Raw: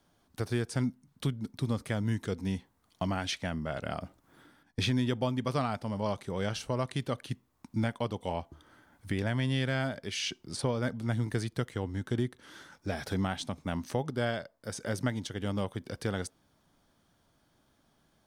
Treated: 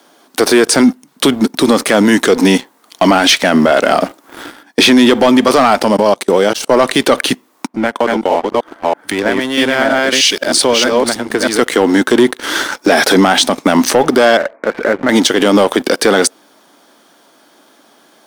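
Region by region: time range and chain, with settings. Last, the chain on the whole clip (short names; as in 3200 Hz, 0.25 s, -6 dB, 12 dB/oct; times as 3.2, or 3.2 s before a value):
5.88–6.71 bell 1900 Hz -6 dB 2.6 oct + level quantiser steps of 18 dB
7.67–11.59 reverse delay 0.317 s, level -1 dB + compressor 4:1, threshold -42 dBFS + three-band expander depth 100%
14.37–15.09 G.711 law mismatch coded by mu + Chebyshev low-pass 2400 Hz, order 8 + compressor 2:1, threshold -51 dBFS
whole clip: HPF 270 Hz 24 dB/oct; sample leveller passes 2; maximiser +28.5 dB; gain -1 dB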